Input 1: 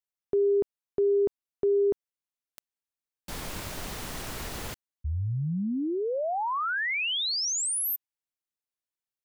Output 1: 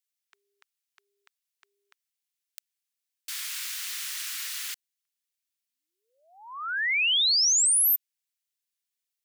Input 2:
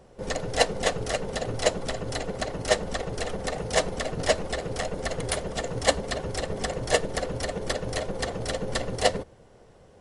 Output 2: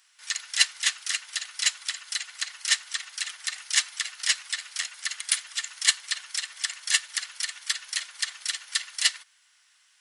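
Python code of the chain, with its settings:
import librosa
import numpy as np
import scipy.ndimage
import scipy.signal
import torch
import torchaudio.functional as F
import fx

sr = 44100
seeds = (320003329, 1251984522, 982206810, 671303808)

y = scipy.signal.sosfilt(scipy.signal.bessel(6, 2400.0, 'highpass', norm='mag', fs=sr, output='sos'), x)
y = y * 10.0 ** (7.5 / 20.0)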